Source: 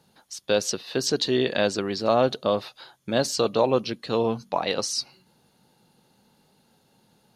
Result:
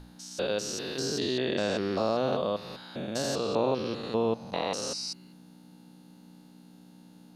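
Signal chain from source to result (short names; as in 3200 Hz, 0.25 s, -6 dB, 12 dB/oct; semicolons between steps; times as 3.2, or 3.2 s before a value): stepped spectrum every 0.2 s; in parallel at +2.5 dB: compressor, threshold -36 dBFS, peak gain reduction 16 dB; on the sum: hum 60 Hz, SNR 13 dB; notches 60/120 Hz; gain -4.5 dB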